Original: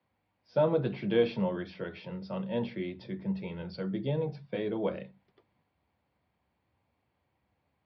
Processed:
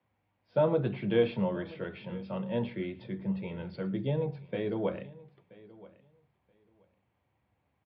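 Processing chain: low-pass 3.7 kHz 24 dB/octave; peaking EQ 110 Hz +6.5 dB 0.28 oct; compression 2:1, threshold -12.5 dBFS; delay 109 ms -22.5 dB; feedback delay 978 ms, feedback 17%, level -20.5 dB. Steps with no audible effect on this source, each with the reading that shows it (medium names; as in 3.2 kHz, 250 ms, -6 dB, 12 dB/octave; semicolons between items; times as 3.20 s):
compression, threshold -12.5 dBFS: peak at its input -14.0 dBFS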